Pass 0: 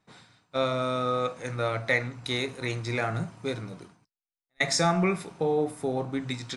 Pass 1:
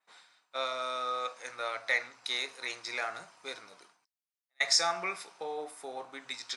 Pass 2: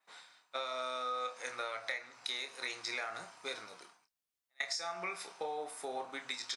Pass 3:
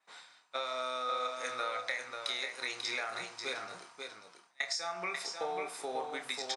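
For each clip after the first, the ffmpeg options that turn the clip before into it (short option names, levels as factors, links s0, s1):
-af "highpass=790,adynamicequalizer=threshold=0.00282:dfrequency=5100:dqfactor=2.3:tfrequency=5100:tqfactor=2.3:attack=5:release=100:ratio=0.375:range=3.5:mode=boostabove:tftype=bell,volume=0.708"
-filter_complex "[0:a]acompressor=threshold=0.0141:ratio=16,asplit=2[s0][s1];[s1]adelay=28,volume=0.355[s2];[s0][s2]amix=inputs=2:normalize=0,volume=1.26"
-af "aecho=1:1:541:0.531,aresample=22050,aresample=44100,volume=1.26"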